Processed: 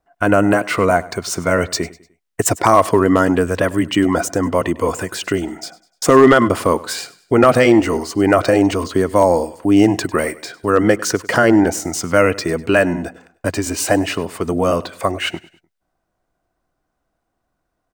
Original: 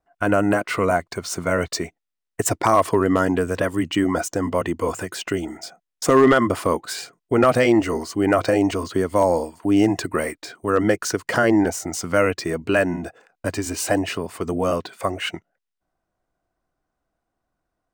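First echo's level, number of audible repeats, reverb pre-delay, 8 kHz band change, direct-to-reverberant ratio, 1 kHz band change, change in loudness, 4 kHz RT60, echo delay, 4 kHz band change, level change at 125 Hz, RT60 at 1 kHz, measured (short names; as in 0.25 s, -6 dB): -20.0 dB, 2, none, +5.0 dB, none, +5.0 dB, +5.0 dB, none, 0.1 s, +5.0 dB, +5.0 dB, none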